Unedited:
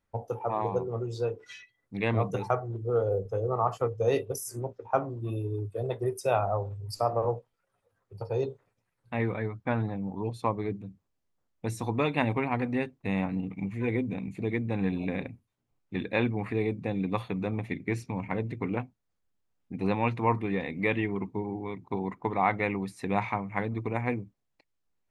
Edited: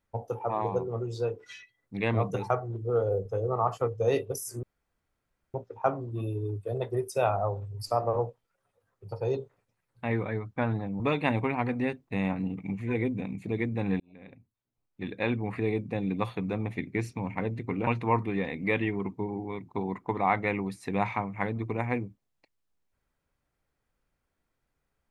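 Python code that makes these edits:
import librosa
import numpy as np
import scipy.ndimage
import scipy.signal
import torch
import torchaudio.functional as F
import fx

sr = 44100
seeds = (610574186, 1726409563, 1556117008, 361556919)

y = fx.edit(x, sr, fx.insert_room_tone(at_s=4.63, length_s=0.91),
    fx.cut(start_s=10.09, length_s=1.84),
    fx.fade_in_span(start_s=14.93, length_s=1.6),
    fx.cut(start_s=18.8, length_s=1.23), tone=tone)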